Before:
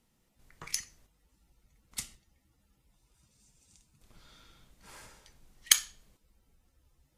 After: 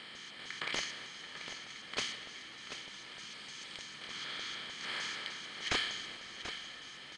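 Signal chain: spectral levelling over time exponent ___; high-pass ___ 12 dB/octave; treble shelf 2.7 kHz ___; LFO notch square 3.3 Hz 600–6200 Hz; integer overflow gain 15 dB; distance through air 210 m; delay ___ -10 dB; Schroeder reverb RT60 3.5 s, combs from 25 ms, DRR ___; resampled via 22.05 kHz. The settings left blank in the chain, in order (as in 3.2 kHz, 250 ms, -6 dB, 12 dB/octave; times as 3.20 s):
0.4, 220 Hz, +3.5 dB, 736 ms, 13.5 dB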